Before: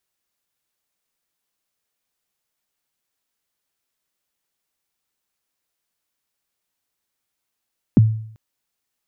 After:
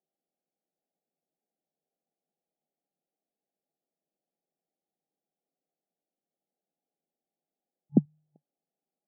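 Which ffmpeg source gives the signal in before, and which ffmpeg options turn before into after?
-f lavfi -i "aevalsrc='0.531*pow(10,-3*t/0.62)*sin(2*PI*(310*0.022/log(110/310)*(exp(log(110/310)*min(t,0.022)/0.022)-1)+110*max(t-0.022,0)))':d=0.39:s=44100"
-af "afftfilt=real='re*between(b*sr/4096,140,850)':imag='im*between(b*sr/4096,140,850)':win_size=4096:overlap=0.75,alimiter=limit=-9.5dB:level=0:latency=1:release=180"

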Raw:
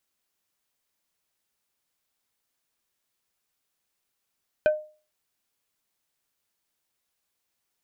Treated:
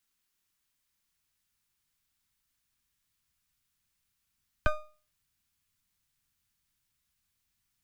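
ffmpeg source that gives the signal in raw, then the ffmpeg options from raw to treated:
-f lavfi -i "aevalsrc='0.2*pow(10,-3*t/0.37)*sin(2*PI*612*t)+0.075*pow(10,-3*t/0.123)*sin(2*PI*1530*t)+0.0282*pow(10,-3*t/0.07)*sin(2*PI*2448*t)+0.0106*pow(10,-3*t/0.054)*sin(2*PI*3060*t)+0.00398*pow(10,-3*t/0.039)*sin(2*PI*3978*t)':d=0.45:s=44100"
-filter_complex "[0:a]asubboost=boost=5:cutoff=160,acrossover=split=170|380|840[a][b][c][d];[c]aeval=exprs='abs(val(0))':c=same[e];[a][b][e][d]amix=inputs=4:normalize=0"

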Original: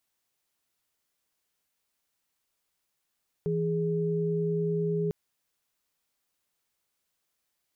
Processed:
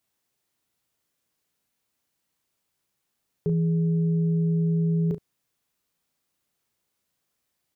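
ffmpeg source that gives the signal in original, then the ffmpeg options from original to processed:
-f lavfi -i "aevalsrc='0.0398*(sin(2*PI*164.81*t)+sin(2*PI*415.3*t))':d=1.65:s=44100"
-af "highpass=f=130:p=1,lowshelf=f=290:g=11.5,aecho=1:1:35|71:0.501|0.15"

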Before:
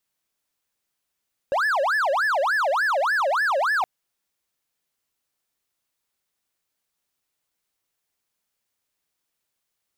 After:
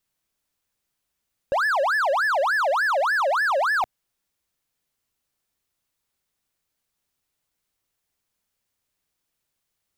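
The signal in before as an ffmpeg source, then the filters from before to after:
-f lavfi -i "aevalsrc='0.141*(1-4*abs(mod((1143*t-607/(2*PI*3.4)*sin(2*PI*3.4*t))+0.25,1)-0.5))':d=2.32:s=44100"
-af "lowshelf=f=170:g=8.5"

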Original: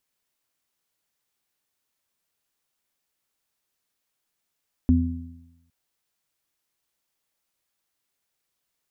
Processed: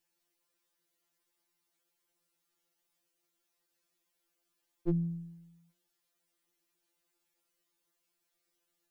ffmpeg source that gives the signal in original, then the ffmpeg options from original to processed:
-f lavfi -i "aevalsrc='0.15*pow(10,-3*t/0.98)*sin(2*PI*84.3*t)+0.0299*pow(10,-3*t/1.1)*sin(2*PI*168.6*t)+0.188*pow(10,-3*t/0.84)*sin(2*PI*252.9*t)':d=0.81:s=44100"
-af "equalizer=f=340:w=1.7:g=8.5,bandreject=f=60:t=h:w=6,bandreject=f=120:t=h:w=6,bandreject=f=180:t=h:w=6,bandreject=f=240:t=h:w=6,afftfilt=real='re*2.83*eq(mod(b,8),0)':imag='im*2.83*eq(mod(b,8),0)':win_size=2048:overlap=0.75"

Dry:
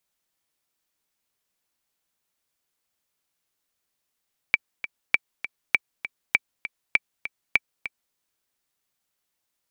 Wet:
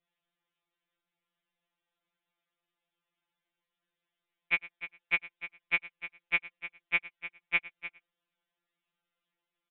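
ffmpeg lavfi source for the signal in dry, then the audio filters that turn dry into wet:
-f lavfi -i "aevalsrc='pow(10,(-4-13*gte(mod(t,2*60/199),60/199))/20)*sin(2*PI*2320*mod(t,60/199))*exp(-6.91*mod(t,60/199)/0.03)':d=3.61:s=44100"
-af "aecho=1:1:109:0.106,aresample=8000,aresample=44100,afftfilt=real='re*2.83*eq(mod(b,8),0)':imag='im*2.83*eq(mod(b,8),0)':win_size=2048:overlap=0.75"

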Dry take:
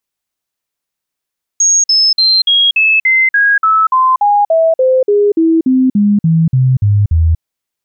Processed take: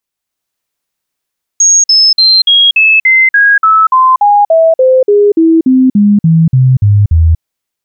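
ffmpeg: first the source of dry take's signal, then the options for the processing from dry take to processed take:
-f lavfi -i "aevalsrc='0.473*clip(min(mod(t,0.29),0.24-mod(t,0.29))/0.005,0,1)*sin(2*PI*6570*pow(2,-floor(t/0.29)/3)*mod(t,0.29))':d=5.8:s=44100"
-af "dynaudnorm=f=140:g=5:m=5dB"

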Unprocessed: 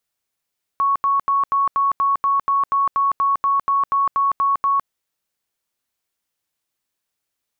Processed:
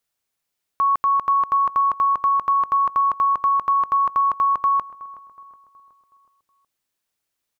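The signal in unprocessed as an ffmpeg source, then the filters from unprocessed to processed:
-f lavfi -i "aevalsrc='0.188*sin(2*PI*1110*mod(t,0.24))*lt(mod(t,0.24),174/1110)':d=4.08:s=44100"
-filter_complex "[0:a]asplit=2[a][b];[b]adelay=370,lowpass=f=1.7k:p=1,volume=-17.5dB,asplit=2[c][d];[d]adelay=370,lowpass=f=1.7k:p=1,volume=0.53,asplit=2[e][f];[f]adelay=370,lowpass=f=1.7k:p=1,volume=0.53,asplit=2[g][h];[h]adelay=370,lowpass=f=1.7k:p=1,volume=0.53,asplit=2[i][j];[j]adelay=370,lowpass=f=1.7k:p=1,volume=0.53[k];[a][c][e][g][i][k]amix=inputs=6:normalize=0"

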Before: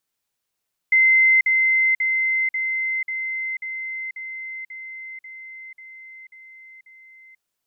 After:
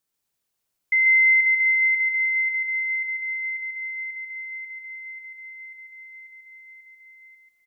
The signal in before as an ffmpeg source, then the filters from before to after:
-f lavfi -i "aevalsrc='pow(10,(-12-3*floor(t/0.54))/20)*sin(2*PI*2070*t)*clip(min(mod(t,0.54),0.49-mod(t,0.54))/0.005,0,1)':d=6.48:s=44100"
-af "equalizer=f=2k:w=0.37:g=-3.5,aecho=1:1:140|252|341.6|413.3|470.6:0.631|0.398|0.251|0.158|0.1"

